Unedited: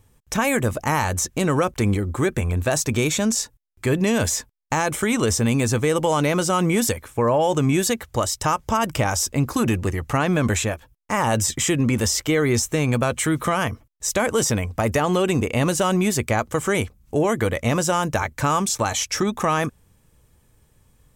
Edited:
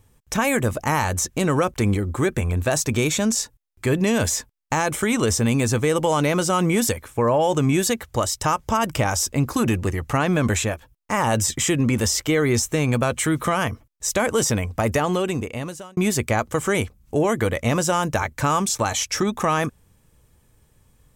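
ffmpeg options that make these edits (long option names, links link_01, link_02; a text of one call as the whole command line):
ffmpeg -i in.wav -filter_complex "[0:a]asplit=2[link_01][link_02];[link_01]atrim=end=15.97,asetpts=PTS-STARTPTS,afade=type=out:start_time=14.93:duration=1.04[link_03];[link_02]atrim=start=15.97,asetpts=PTS-STARTPTS,afade=type=in:duration=0.004:curve=hsin[link_04];[link_03][link_04]concat=n=2:v=0:a=1" out.wav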